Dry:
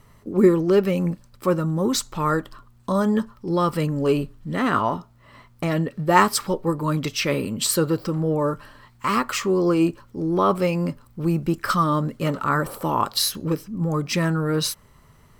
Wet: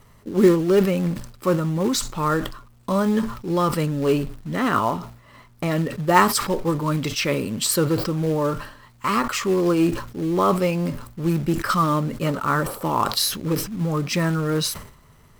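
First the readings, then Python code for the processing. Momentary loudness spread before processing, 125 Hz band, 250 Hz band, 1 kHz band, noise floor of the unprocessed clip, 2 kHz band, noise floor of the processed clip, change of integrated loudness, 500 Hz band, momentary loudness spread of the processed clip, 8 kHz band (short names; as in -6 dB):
8 LU, +0.5 dB, +0.5 dB, +0.5 dB, -54 dBFS, +0.5 dB, -52 dBFS, +0.5 dB, +0.5 dB, 8 LU, +1.0 dB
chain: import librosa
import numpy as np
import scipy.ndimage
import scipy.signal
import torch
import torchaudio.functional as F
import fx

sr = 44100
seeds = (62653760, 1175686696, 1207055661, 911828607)

p1 = fx.quant_companded(x, sr, bits=4)
p2 = x + F.gain(torch.from_numpy(p1), -6.0).numpy()
p3 = fx.sustainer(p2, sr, db_per_s=95.0)
y = F.gain(torch.from_numpy(p3), -3.5).numpy()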